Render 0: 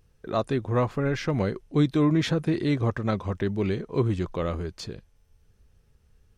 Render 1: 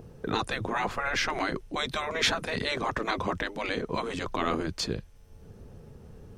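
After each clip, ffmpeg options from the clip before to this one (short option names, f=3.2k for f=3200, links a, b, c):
-filter_complex "[0:a]acrossover=split=120|920[a][b][c];[b]acompressor=mode=upward:threshold=-44dB:ratio=2.5[d];[a][d][c]amix=inputs=3:normalize=0,afftfilt=real='re*lt(hypot(re,im),0.141)':imag='im*lt(hypot(re,im),0.141)':win_size=1024:overlap=0.75,volume=7.5dB"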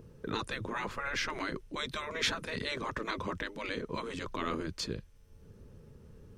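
-af "equalizer=f=740:w=5.7:g=-13,volume=-5.5dB"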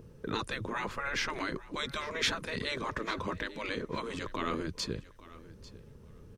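-af "aecho=1:1:845|1690:0.112|0.0191,volume=1dB"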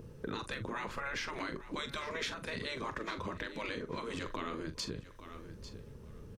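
-filter_complex "[0:a]acompressor=threshold=-38dB:ratio=6,asplit=2[a][b];[b]adelay=43,volume=-11dB[c];[a][c]amix=inputs=2:normalize=0,volume=2dB"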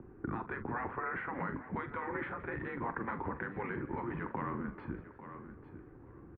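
-filter_complex "[0:a]asplit=6[a][b][c][d][e][f];[b]adelay=169,afreqshift=63,volume=-17.5dB[g];[c]adelay=338,afreqshift=126,volume=-22.4dB[h];[d]adelay=507,afreqshift=189,volume=-27.3dB[i];[e]adelay=676,afreqshift=252,volume=-32.1dB[j];[f]adelay=845,afreqshift=315,volume=-37dB[k];[a][g][h][i][j][k]amix=inputs=6:normalize=0,highpass=f=190:t=q:w=0.5412,highpass=f=190:t=q:w=1.307,lowpass=f=2k:t=q:w=0.5176,lowpass=f=2k:t=q:w=0.7071,lowpass=f=2k:t=q:w=1.932,afreqshift=-110,volume=2.5dB"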